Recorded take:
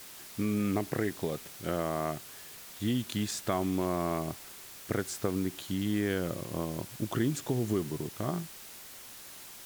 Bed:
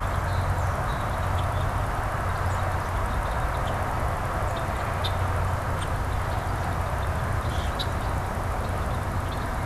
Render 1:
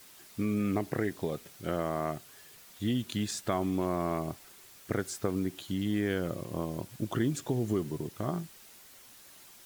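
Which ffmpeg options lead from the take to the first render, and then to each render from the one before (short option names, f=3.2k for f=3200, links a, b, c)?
-af "afftdn=nr=7:nf=-48"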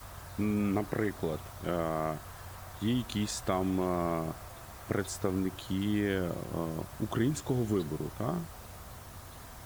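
-filter_complex "[1:a]volume=-20.5dB[a];[0:a][a]amix=inputs=2:normalize=0"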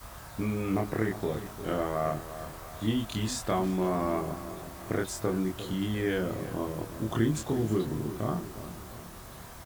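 -filter_complex "[0:a]asplit=2[a][b];[b]adelay=27,volume=-2.5dB[c];[a][c]amix=inputs=2:normalize=0,asplit=2[d][e];[e]adelay=352,lowpass=f=2k:p=1,volume=-12dB,asplit=2[f][g];[g]adelay=352,lowpass=f=2k:p=1,volume=0.49,asplit=2[h][i];[i]adelay=352,lowpass=f=2k:p=1,volume=0.49,asplit=2[j][k];[k]adelay=352,lowpass=f=2k:p=1,volume=0.49,asplit=2[l][m];[m]adelay=352,lowpass=f=2k:p=1,volume=0.49[n];[d][f][h][j][l][n]amix=inputs=6:normalize=0"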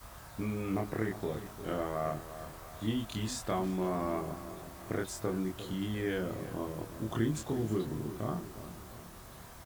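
-af "volume=-4.5dB"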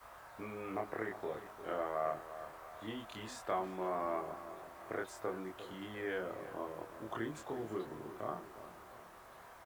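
-filter_complex "[0:a]acrossover=split=410 2400:gain=0.141 1 0.251[a][b][c];[a][b][c]amix=inputs=3:normalize=0"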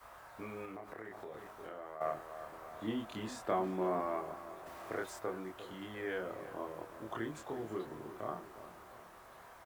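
-filter_complex "[0:a]asettb=1/sr,asplit=3[a][b][c];[a]atrim=end=0.654[d];[b]atrim=start=0.65:end=2.01,asetpts=PTS-STARTPTS,afade=t=in:d=0.004:c=qsin,afade=t=out:st=1.356:d=0.004:c=qsin,acompressor=threshold=-43dB:ratio=5:attack=3.2:release=140:knee=1:detection=peak[e];[c]atrim=start=2.006[f];[d][e]acrossfade=d=0.004:c1=hsin:c2=qsin[g];[g][f]acrossfade=d=0.004:c1=qsin:c2=hsin,asettb=1/sr,asplit=3[h][i][j];[h]atrim=end=2.524[k];[i]atrim=start=2.52:end=4.01,asetpts=PTS-STARTPTS,afade=t=in:d=0.004:c=qsin,afade=t=out:st=1.486:d=0.004:c=qsin,equalizer=f=230:w=0.63:g=8[l];[j]atrim=start=4.006[m];[k][l]acrossfade=d=0.004:c1=hsin:c2=qsin[n];[n][m]acrossfade=d=0.004:c1=qsin:c2=hsin,asettb=1/sr,asplit=3[o][p][q];[o]atrim=end=4.664[r];[p]atrim=start=4.66:end=5.19,asetpts=PTS-STARTPTS,afade=t=in:d=0.004:c=qsin,afade=t=out:st=0.526:d=0.004:c=qsin,aeval=exprs='val(0)+0.5*0.00266*sgn(val(0))':c=same[s];[q]atrim=start=5.186[t];[r][s]acrossfade=d=0.004:c1=hsin:c2=qsin[u];[u][t]acrossfade=d=0.004:c1=qsin:c2=hsin"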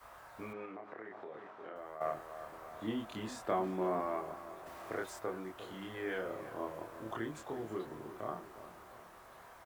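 -filter_complex "[0:a]asettb=1/sr,asplit=3[a][b][c];[a]atrim=end=0.534[d];[b]atrim=start=0.53:end=1.76,asetpts=PTS-STARTPTS,afade=t=in:d=0.004:c=qsin,afade=t=out:st=1.226:d=0.004:c=qsin,highpass=180,lowpass=3k[e];[c]atrim=start=1.756[f];[d][e]acrossfade=d=0.004:c1=hsin:c2=qsin[g];[g][f]acrossfade=d=0.004:c1=qsin:c2=hsin,asettb=1/sr,asplit=3[h][i][j];[h]atrim=end=5.544[k];[i]atrim=start=5.54:end=7.16,asetpts=PTS-STARTPTS,afade=t=in:d=0.004:c=qsin,afade=t=out:st=1.616:d=0.004:c=qsin,asplit=2[l][m];[m]adelay=36,volume=-5.5dB[n];[l][n]amix=inputs=2:normalize=0,atrim=end_sample=71442[o];[j]atrim=start=7.156[p];[k][o]acrossfade=d=0.004:c1=hsin:c2=qsin[q];[q][p]acrossfade=d=0.004:c1=qsin:c2=hsin"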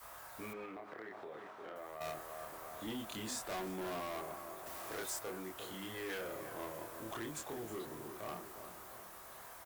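-filter_complex "[0:a]acrossover=split=3300[a][b];[a]asoftclip=type=tanh:threshold=-39dB[c];[c][b]amix=inputs=2:normalize=0,crystalizer=i=2.5:c=0"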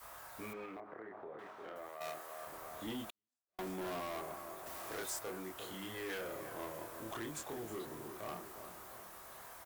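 -filter_complex "[0:a]asettb=1/sr,asplit=3[a][b][c];[a]atrim=end=0.804[d];[b]atrim=start=0.8:end=1.39,asetpts=PTS-STARTPTS,afade=t=in:d=0.004:c=qsin,afade=t=out:st=0.586:d=0.004:c=qsin,lowpass=1.5k[e];[c]atrim=start=1.386[f];[d][e]acrossfade=d=0.004:c1=hsin:c2=qsin[g];[g][f]acrossfade=d=0.004:c1=qsin:c2=hsin,asettb=1/sr,asplit=3[h][i][j];[h]atrim=end=1.894[k];[i]atrim=start=1.89:end=2.47,asetpts=PTS-STARTPTS,afade=t=in:d=0.004:c=qsin,afade=t=out:st=0.576:d=0.004:c=qsin,highpass=f=370:p=1[l];[j]atrim=start=2.466[m];[k][l]acrossfade=d=0.004:c1=hsin:c2=qsin[n];[n][m]acrossfade=d=0.004:c1=qsin:c2=hsin,asettb=1/sr,asplit=3[o][p][q];[o]atrim=end=3.104[r];[p]atrim=start=3.1:end=3.59,asetpts=PTS-STARTPTS,afade=t=in:d=0.004:c=qsin,afade=t=out:st=0.486:d=0.004:c=qsin,agate=range=-57dB:threshold=-35dB:ratio=16:release=100:detection=peak[s];[q]atrim=start=3.586[t];[r][s]acrossfade=d=0.004:c1=hsin:c2=qsin[u];[u][t]acrossfade=d=0.004:c1=qsin:c2=hsin"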